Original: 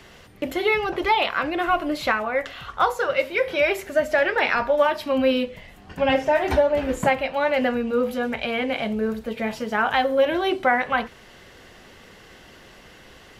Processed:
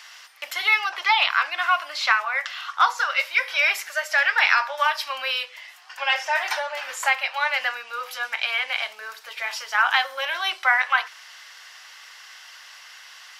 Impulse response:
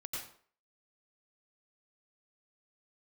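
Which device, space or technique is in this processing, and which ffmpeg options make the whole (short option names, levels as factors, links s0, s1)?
headphones lying on a table: -filter_complex "[0:a]highpass=f=1000:w=0.5412,highpass=f=1000:w=1.3066,equalizer=f=5300:t=o:w=0.51:g=7.5,asettb=1/sr,asplit=3[s0][s1][s2];[s0]atrim=end=0.884[s3];[s1]atrim=start=0.88:end=2.98,asetpts=PTS-STARTPTS,afade=t=in:d=0.004:c=qsin,afade=t=out:st=2.096:d=0.004:c=qsin,acrossover=split=7500[s4][s5];[s5]acompressor=threshold=0.00112:ratio=4:attack=1:release=60[s6];[s4][s6]amix=inputs=2:normalize=0[s7];[s2]atrim=start=2.976[s8];[s3][s7]acrossfade=d=0.004:c1=hsin:c2=qsin[s9];[s9][s8]acrossfade=d=0.004:c1=qsin:c2=hsin,volume=1.68"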